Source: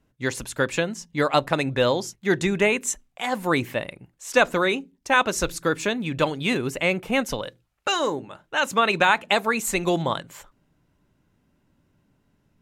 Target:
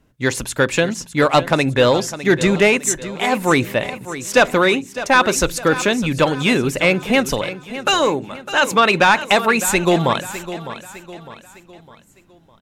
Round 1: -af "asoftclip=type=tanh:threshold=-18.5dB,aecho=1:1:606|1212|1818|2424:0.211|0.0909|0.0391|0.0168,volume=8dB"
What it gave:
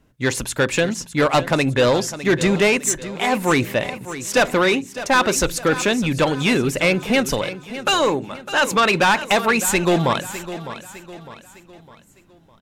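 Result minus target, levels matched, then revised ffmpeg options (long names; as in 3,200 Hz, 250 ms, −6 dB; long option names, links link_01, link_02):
soft clipping: distortion +7 dB
-af "asoftclip=type=tanh:threshold=-12dB,aecho=1:1:606|1212|1818|2424:0.211|0.0909|0.0391|0.0168,volume=8dB"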